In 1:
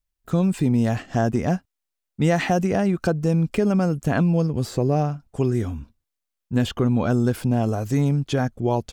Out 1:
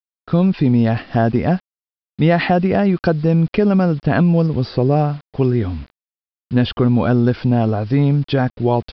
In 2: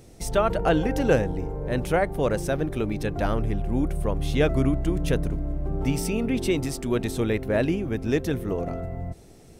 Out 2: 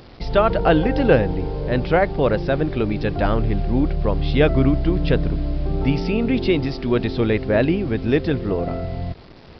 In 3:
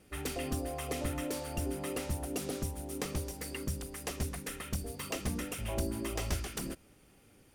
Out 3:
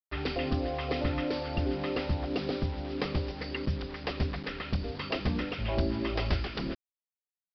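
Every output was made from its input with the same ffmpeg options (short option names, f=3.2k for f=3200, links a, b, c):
-af "acrusher=bits=7:mix=0:aa=0.000001,aresample=11025,aresample=44100,volume=5.5dB"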